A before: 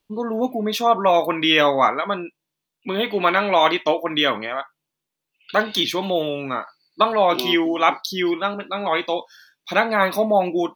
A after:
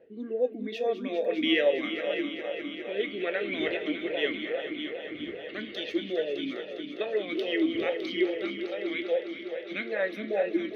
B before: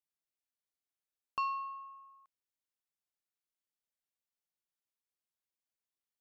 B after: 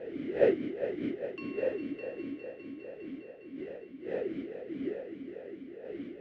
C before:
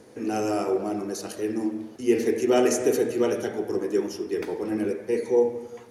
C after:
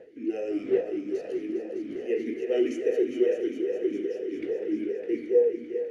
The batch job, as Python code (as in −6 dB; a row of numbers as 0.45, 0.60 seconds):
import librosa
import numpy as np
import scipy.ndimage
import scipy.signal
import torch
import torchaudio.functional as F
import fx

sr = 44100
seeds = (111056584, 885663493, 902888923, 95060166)

y = fx.dmg_wind(x, sr, seeds[0], corner_hz=530.0, level_db=-37.0)
y = fx.echo_heads(y, sr, ms=203, heads='all three', feedback_pct=67, wet_db=-12.5)
y = fx.vowel_sweep(y, sr, vowels='e-i', hz=2.4)
y = y * 10.0 ** (-12 / 20.0) / np.max(np.abs(y))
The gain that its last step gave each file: +0.5, +10.0, +3.0 decibels